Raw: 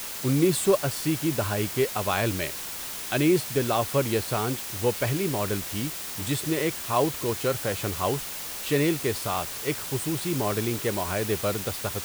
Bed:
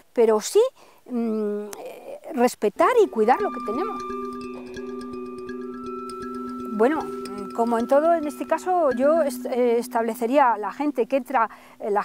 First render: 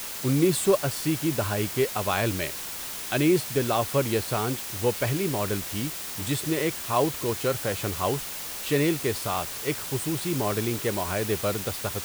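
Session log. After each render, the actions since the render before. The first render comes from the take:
no processing that can be heard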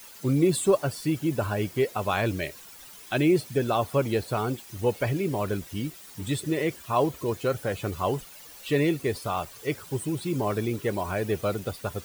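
broadband denoise 14 dB, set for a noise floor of −35 dBFS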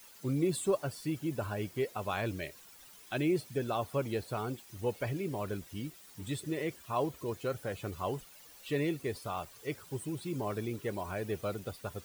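level −8.5 dB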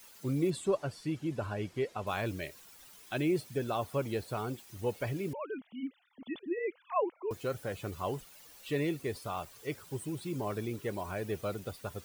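0:00.50–0:02.07: high-frequency loss of the air 55 metres
0:05.33–0:07.31: three sine waves on the formant tracks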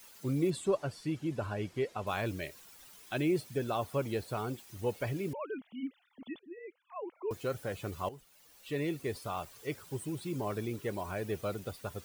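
0:06.25–0:07.18: duck −12.5 dB, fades 0.17 s
0:08.09–0:09.10: fade in, from −14 dB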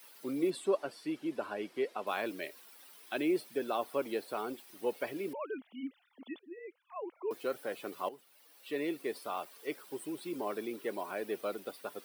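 high-pass filter 250 Hz 24 dB per octave
parametric band 6,800 Hz −8.5 dB 0.46 octaves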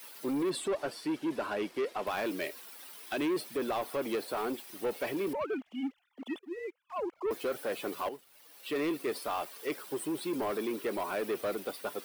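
brickwall limiter −26 dBFS, peak gain reduction 6.5 dB
leveller curve on the samples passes 2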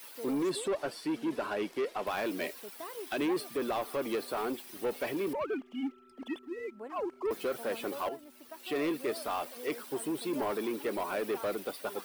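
mix in bed −26 dB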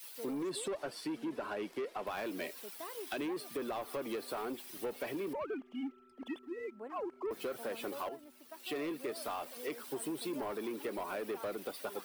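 downward compressor, threshold −36 dBFS, peak gain reduction 8.5 dB
multiband upward and downward expander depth 40%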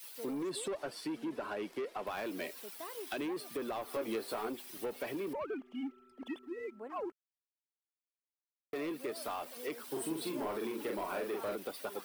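0:03.92–0:04.49: double-tracking delay 18 ms −4.5 dB
0:07.12–0:08.73: silence
0:09.87–0:11.56: double-tracking delay 44 ms −3.5 dB

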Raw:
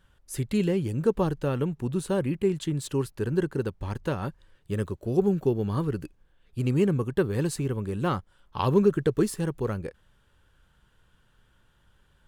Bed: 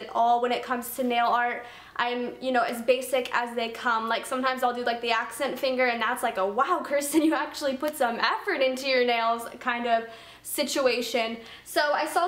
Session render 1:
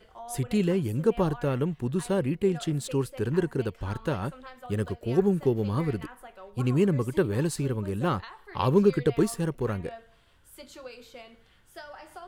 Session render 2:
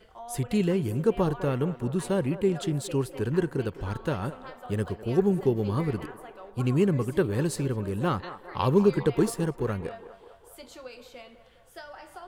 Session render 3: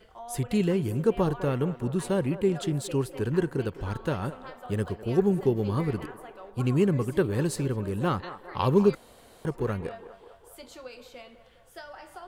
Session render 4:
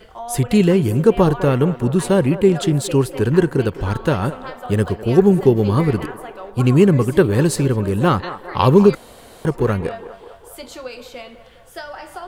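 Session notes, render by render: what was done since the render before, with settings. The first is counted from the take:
mix in bed −20 dB
feedback echo with a band-pass in the loop 204 ms, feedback 72%, band-pass 770 Hz, level −12 dB
0:08.95–0:09.45: fill with room tone
level +11 dB; brickwall limiter −1 dBFS, peak gain reduction 2.5 dB

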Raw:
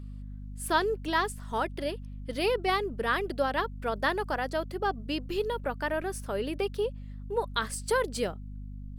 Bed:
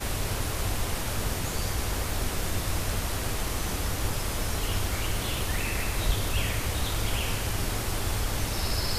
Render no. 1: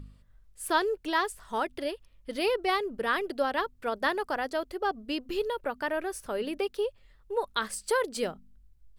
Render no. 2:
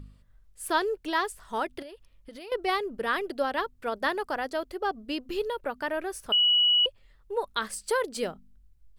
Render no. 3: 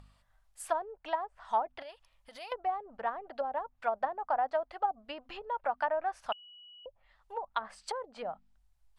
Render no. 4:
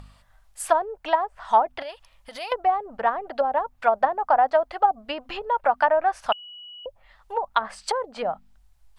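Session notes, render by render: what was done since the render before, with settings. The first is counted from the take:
hum removal 50 Hz, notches 5
0:01.82–0:02.52: downward compressor 10 to 1, threshold −40 dBFS; 0:06.32–0:06.86: beep over 2,930 Hz −18.5 dBFS
treble cut that deepens with the level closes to 450 Hz, closed at −24.5 dBFS; low shelf with overshoot 530 Hz −11.5 dB, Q 3
level +11.5 dB

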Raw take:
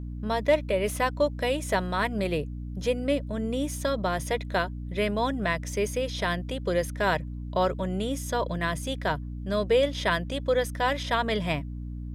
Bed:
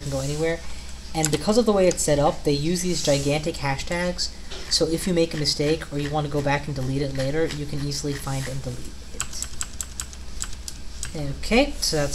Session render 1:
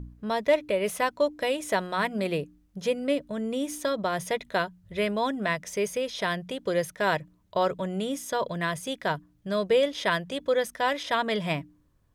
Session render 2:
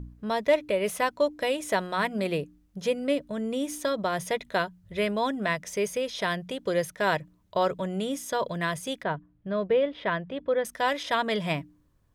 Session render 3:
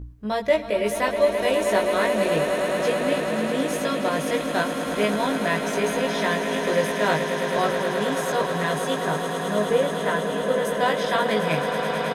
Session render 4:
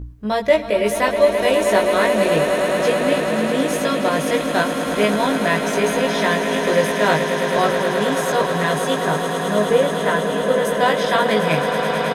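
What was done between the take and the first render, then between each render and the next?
hum removal 60 Hz, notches 5
0:09.03–0:10.65: high-frequency loss of the air 430 metres
double-tracking delay 19 ms −2.5 dB; echo that builds up and dies away 107 ms, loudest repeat 8, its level −10.5 dB
level +5 dB

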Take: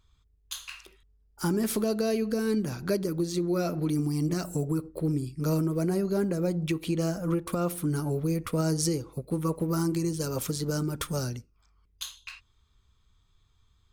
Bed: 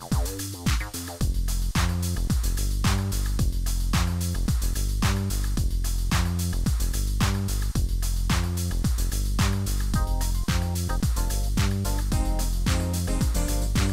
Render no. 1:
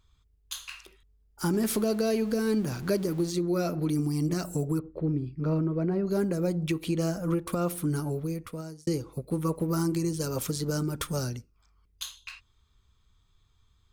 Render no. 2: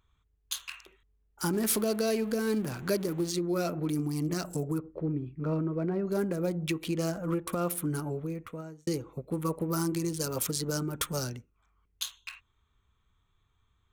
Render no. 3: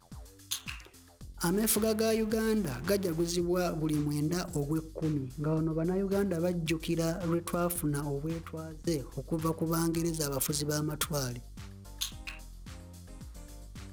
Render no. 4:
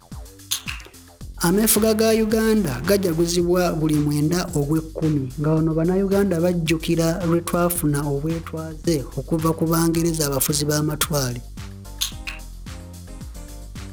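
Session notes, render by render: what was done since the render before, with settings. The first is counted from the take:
0:01.53–0:03.31: converter with a step at zero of −41.5 dBFS; 0:04.79–0:06.07: high-frequency loss of the air 380 metres; 0:07.92–0:08.87: fade out
adaptive Wiener filter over 9 samples; spectral tilt +1.5 dB per octave
mix in bed −22.5 dB
level +11 dB

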